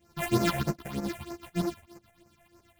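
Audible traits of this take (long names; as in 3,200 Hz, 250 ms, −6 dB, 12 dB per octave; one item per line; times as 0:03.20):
a buzz of ramps at a fixed pitch in blocks of 128 samples
phaser sweep stages 6, 3.2 Hz, lowest notch 290–3,400 Hz
tremolo saw up 8.1 Hz, depth 75%
a shimmering, thickened sound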